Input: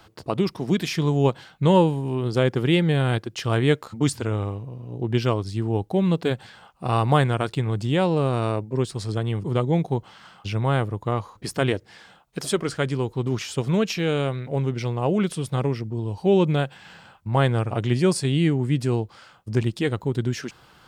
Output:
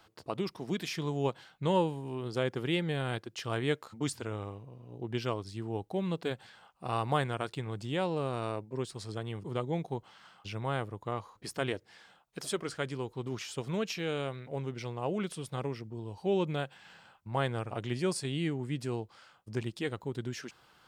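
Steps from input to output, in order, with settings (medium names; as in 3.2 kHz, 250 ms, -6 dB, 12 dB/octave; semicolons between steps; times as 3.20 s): bass shelf 260 Hz -7 dB; trim -8.5 dB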